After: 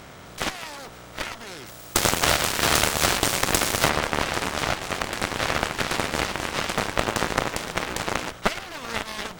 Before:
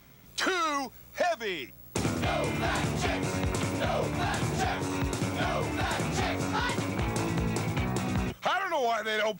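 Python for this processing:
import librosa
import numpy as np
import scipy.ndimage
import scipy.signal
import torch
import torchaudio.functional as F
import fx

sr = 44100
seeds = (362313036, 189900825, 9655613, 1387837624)

y = fx.bin_compress(x, sr, power=0.4)
y = fx.high_shelf(y, sr, hz=4500.0, db=12.0, at=(1.65, 3.88), fade=0.02)
y = fx.cheby_harmonics(y, sr, harmonics=(4, 7), levels_db=(-11, -13), full_scale_db=-6.0)
y = fx.upward_expand(y, sr, threshold_db=-33.0, expansion=1.5)
y = y * librosa.db_to_amplitude(2.0)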